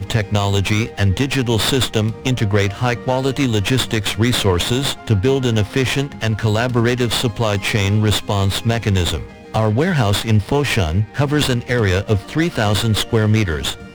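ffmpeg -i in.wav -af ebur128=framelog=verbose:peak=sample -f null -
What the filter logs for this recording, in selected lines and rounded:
Integrated loudness:
  I:         -17.7 LUFS
  Threshold: -27.7 LUFS
Loudness range:
  LRA:         0.5 LU
  Threshold: -37.7 LUFS
  LRA low:   -17.9 LUFS
  LRA high:  -17.4 LUFS
Sample peak:
  Peak:       -3.8 dBFS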